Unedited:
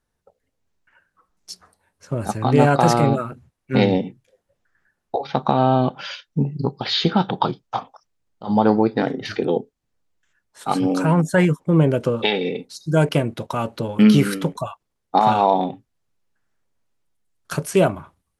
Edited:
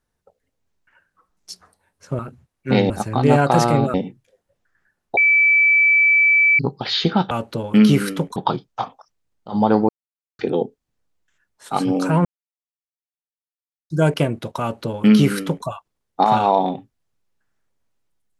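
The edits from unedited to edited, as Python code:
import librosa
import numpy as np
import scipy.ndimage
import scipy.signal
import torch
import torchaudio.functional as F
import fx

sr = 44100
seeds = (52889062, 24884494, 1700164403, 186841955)

y = fx.edit(x, sr, fx.move(start_s=3.23, length_s=0.71, to_s=2.19),
    fx.bleep(start_s=5.17, length_s=1.42, hz=2310.0, db=-11.0),
    fx.silence(start_s=8.84, length_s=0.5),
    fx.silence(start_s=11.2, length_s=1.65),
    fx.duplicate(start_s=13.56, length_s=1.05, to_s=7.31), tone=tone)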